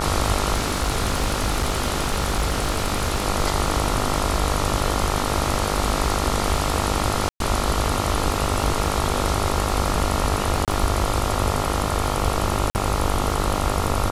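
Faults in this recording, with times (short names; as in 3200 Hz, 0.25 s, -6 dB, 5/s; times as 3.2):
buzz 50 Hz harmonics 28 -26 dBFS
crackle 47/s -30 dBFS
0.54–3.26 clipped -16.5 dBFS
7.29–7.4 gap 0.112 s
10.65–10.68 gap 27 ms
12.7–12.75 gap 49 ms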